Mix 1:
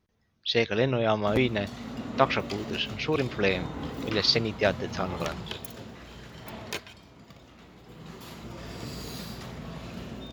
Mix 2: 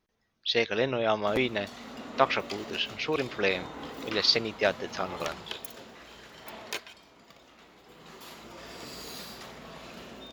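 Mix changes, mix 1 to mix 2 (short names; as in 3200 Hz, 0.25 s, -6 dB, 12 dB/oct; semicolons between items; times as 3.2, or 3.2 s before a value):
background: add bell 98 Hz -6 dB 2.3 oct; master: add bell 93 Hz -10.5 dB 2.6 oct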